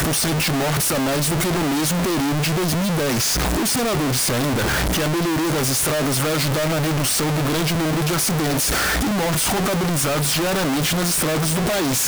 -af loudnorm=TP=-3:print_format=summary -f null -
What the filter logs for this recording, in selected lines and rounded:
Input Integrated:    -19.3 LUFS
Input True Peak:     -14.4 dBTP
Input LRA:             0.5 LU
Input Threshold:     -29.3 LUFS